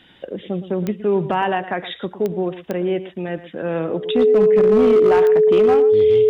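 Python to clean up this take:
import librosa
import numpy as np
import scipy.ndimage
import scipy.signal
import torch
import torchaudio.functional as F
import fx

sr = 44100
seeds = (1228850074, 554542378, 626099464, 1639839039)

y = fx.fix_declip(x, sr, threshold_db=-9.0)
y = fx.fix_declick_ar(y, sr, threshold=10.0)
y = fx.notch(y, sr, hz=430.0, q=30.0)
y = fx.fix_echo_inverse(y, sr, delay_ms=114, level_db=-14.0)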